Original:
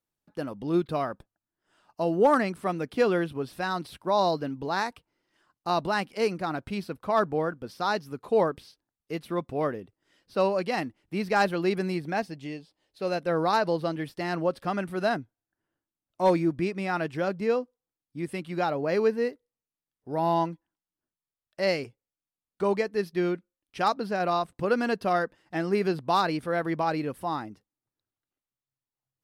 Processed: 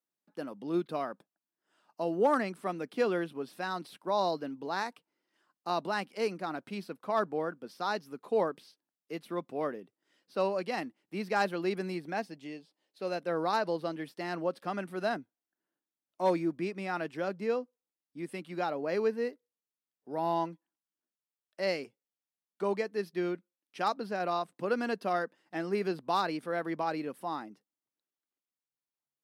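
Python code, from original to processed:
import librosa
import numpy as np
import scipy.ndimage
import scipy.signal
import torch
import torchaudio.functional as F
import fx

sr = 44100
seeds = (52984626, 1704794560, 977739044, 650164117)

y = scipy.signal.sosfilt(scipy.signal.butter(4, 180.0, 'highpass', fs=sr, output='sos'), x)
y = F.gain(torch.from_numpy(y), -5.5).numpy()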